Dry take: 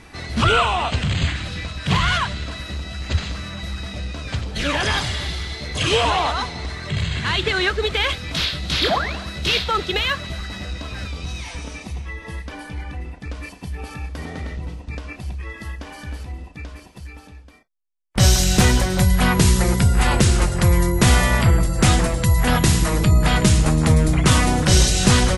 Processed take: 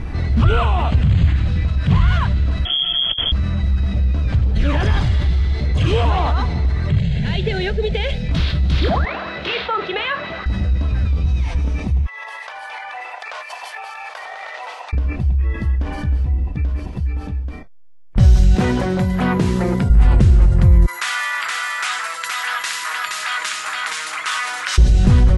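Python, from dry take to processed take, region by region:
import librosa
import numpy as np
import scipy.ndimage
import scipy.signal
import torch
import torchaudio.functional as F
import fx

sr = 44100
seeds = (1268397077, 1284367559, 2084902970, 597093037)

y = fx.chain(x, sr, fx.tilt_eq(slope=-3.0),
    fx.over_compress(threshold_db=-16.0, ratio=-0.5),
    fx.freq_invert(carrier_hz=3300), at=(2.65, 3.32))
y = fx.chain(y, sr, fx.high_shelf(hz=6500.0, db=-4.5),
    fx.fixed_phaser(hz=310.0, stages=6), at=(6.99, 8.29))
y = fx.chain(y, sr, fx.bandpass_edges(low_hz=580.0, high_hz=2900.0),
    fx.doubler(ms=42.0, db=-13.5), at=(9.05, 10.46))
y = fx.chain(y, sr, fx.steep_highpass(hz=690.0, slope=36),
    fx.over_compress(threshold_db=-44.0, ratio=-1.0), at=(12.06, 14.93))
y = fx.chain(y, sr, fx.highpass(hz=240.0, slope=12),
    fx.high_shelf(hz=4100.0, db=-5.5), at=(18.55, 19.9))
y = fx.chain(y, sr, fx.cheby1_highpass(hz=1300.0, order=3),
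    fx.echo_single(ms=470, db=-4.0), at=(20.86, 24.78))
y = fx.riaa(y, sr, side='playback')
y = fx.env_flatten(y, sr, amount_pct=50)
y = F.gain(torch.from_numpy(y), -11.0).numpy()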